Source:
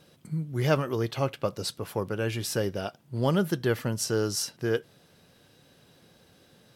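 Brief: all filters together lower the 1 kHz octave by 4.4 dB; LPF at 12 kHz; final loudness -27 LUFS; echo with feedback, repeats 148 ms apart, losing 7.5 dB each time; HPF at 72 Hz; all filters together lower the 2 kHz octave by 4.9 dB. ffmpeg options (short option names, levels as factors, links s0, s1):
-af "highpass=72,lowpass=12000,equalizer=f=1000:t=o:g=-4.5,equalizer=f=2000:t=o:g=-5,aecho=1:1:148|296|444|592|740:0.422|0.177|0.0744|0.0312|0.0131,volume=1.33"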